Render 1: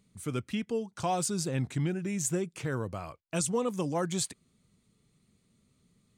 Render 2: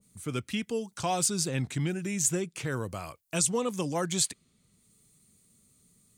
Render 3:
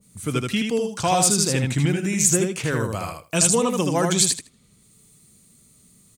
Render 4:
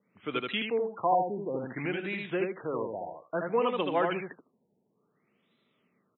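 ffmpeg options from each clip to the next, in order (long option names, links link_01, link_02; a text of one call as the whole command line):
ffmpeg -i in.wav -filter_complex "[0:a]acrossover=split=650|7200[link_01][link_02][link_03];[link_03]acompressor=mode=upward:threshold=-51dB:ratio=2.5[link_04];[link_01][link_02][link_04]amix=inputs=3:normalize=0,adynamicequalizer=threshold=0.00447:dfrequency=1700:dqfactor=0.7:tfrequency=1700:tqfactor=0.7:attack=5:release=100:ratio=0.375:range=3:mode=boostabove:tftype=highshelf" out.wav
ffmpeg -i in.wav -af "aecho=1:1:78|156|234:0.631|0.0946|0.0142,volume=8dB" out.wav
ffmpeg -i in.wav -af "highpass=380,lowpass=5300,afftfilt=real='re*lt(b*sr/1024,940*pow(4100/940,0.5+0.5*sin(2*PI*0.58*pts/sr)))':imag='im*lt(b*sr/1024,940*pow(4100/940,0.5+0.5*sin(2*PI*0.58*pts/sr)))':win_size=1024:overlap=0.75,volume=-3.5dB" out.wav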